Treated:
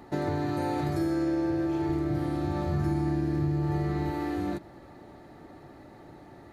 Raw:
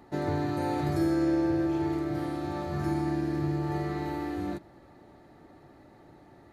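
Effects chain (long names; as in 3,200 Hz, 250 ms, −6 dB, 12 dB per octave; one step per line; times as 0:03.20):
0:01.89–0:04.11: low-shelf EQ 190 Hz +10.5 dB
downward compressor 2.5 to 1, threshold −33 dBFS, peak gain reduction 9 dB
level +5 dB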